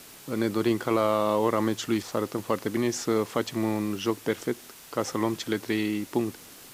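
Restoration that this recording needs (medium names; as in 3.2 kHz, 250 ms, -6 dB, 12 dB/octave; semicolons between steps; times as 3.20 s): de-click; noise reduction 25 dB, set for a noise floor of -48 dBFS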